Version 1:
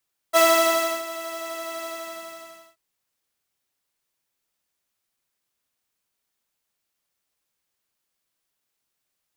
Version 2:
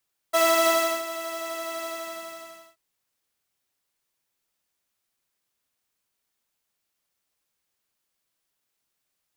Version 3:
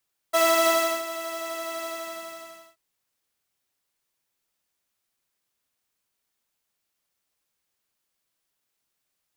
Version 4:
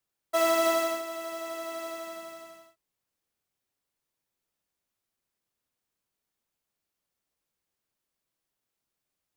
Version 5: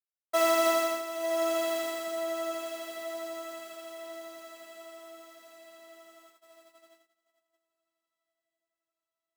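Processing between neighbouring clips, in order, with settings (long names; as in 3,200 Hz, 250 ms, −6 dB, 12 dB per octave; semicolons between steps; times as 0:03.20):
brickwall limiter −11 dBFS, peak gain reduction 5 dB
no processing that can be heard
tilt shelving filter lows +3.5 dB, about 850 Hz; level −3.5 dB
low-shelf EQ 100 Hz −11 dB; feedback delay with all-pass diffusion 1,056 ms, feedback 56%, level −6 dB; noise gate −57 dBFS, range −22 dB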